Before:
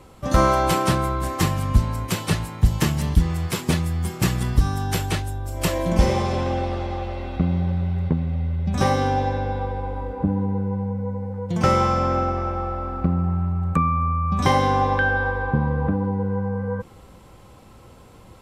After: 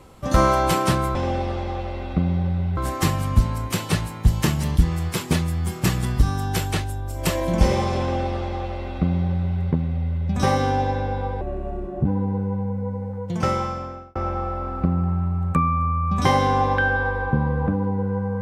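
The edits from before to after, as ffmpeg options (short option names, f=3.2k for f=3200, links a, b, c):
-filter_complex "[0:a]asplit=6[a][b][c][d][e][f];[a]atrim=end=1.152[g];[b]atrim=start=6.378:end=8.002[h];[c]atrim=start=1.148:end=9.794[i];[d]atrim=start=9.79:end=10.26,asetpts=PTS-STARTPTS,asetrate=32193,aresample=44100,atrim=end_sample=28393,asetpts=PTS-STARTPTS[j];[e]atrim=start=10.256:end=12.36,asetpts=PTS-STARTPTS,afade=t=out:st=1.044:d=1.06[k];[f]atrim=start=12.36,asetpts=PTS-STARTPTS,afade=t=in:d=0.004:c=hsin[l];[g][h]acrossfade=d=0.004:c1=hsin:c2=hsin[m];[m][i]acrossfade=d=0.004:c1=hsin:c2=hsin[n];[n][j]acrossfade=d=0.004:c1=hsin:c2=hsin[o];[k][l]concat=n=2:v=0:a=1[p];[o][p]acrossfade=d=0.004:c1=hsin:c2=hsin"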